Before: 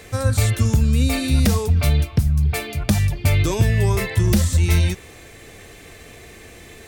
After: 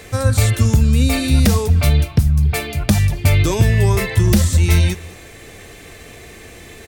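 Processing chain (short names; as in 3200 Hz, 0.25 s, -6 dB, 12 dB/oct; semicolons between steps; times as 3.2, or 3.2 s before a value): echo 0.209 s -22.5 dB; gain +3.5 dB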